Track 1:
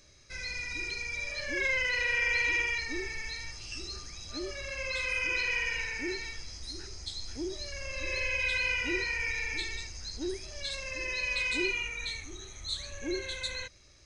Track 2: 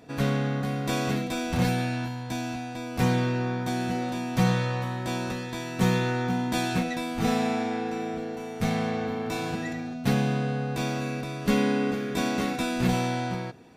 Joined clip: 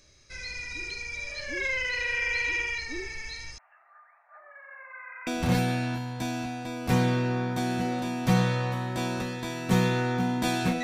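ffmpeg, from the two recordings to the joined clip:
-filter_complex "[0:a]asettb=1/sr,asplit=3[s0][s1][s2];[s0]atrim=end=3.584[s3];[s1]atrim=start=3.58:end=5.27,asetpts=PTS-STARTPTS,afade=t=in:d=0.004:c=qsin,afade=t=out:st=1.686:d=0.004:c=qsin,asuperpass=centerf=1100:order=12:qfactor=0.88[s4];[s2]atrim=start=5.266[s5];[s3][s4]acrossfade=d=0.004:c1=hsin:c2=qsin[s6];[s6][s5]acrossfade=d=0.004:c1=qsin:c2=hsin,apad=whole_dur=10.83,atrim=end=10.83,atrim=end=5.272[s7];[1:a]atrim=start=1.368:end=6.93[s8];[s7][s8]acrossfade=d=0.004:c1=hsin:c2=hsin"

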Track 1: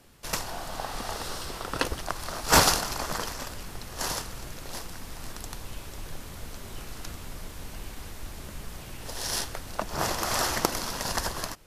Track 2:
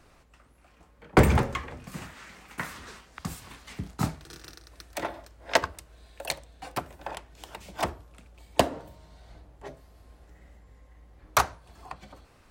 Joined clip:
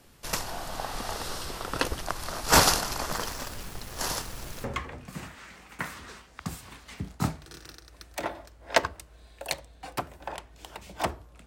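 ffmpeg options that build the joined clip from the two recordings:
-filter_complex "[0:a]asettb=1/sr,asplit=3[s0][s1][s2];[s0]atrim=end=3.114[s3];[s1]atrim=start=3.11:end=4.64,asetpts=PTS-STARTPTS,afade=t=in:d=0.004:c=qsin,afade=t=out:st=1.526:d=0.004:c=qsin,aeval=exprs='val(0)*gte(abs(val(0)),0.0075)':c=same[s4];[s2]atrim=start=4.636[s5];[s3][s4]acrossfade=d=0.004:c1=hsin:c2=qsin[s6];[s6][s5]acrossfade=d=0.004:c1=qsin:c2=hsin,apad=whole_dur=11.46,atrim=end=11.46,atrim=end=4.642[s7];[1:a]atrim=start=1.428:end=8.25[s8];[s7][s8]acrossfade=d=0.004:c1=hsin:c2=hsin"

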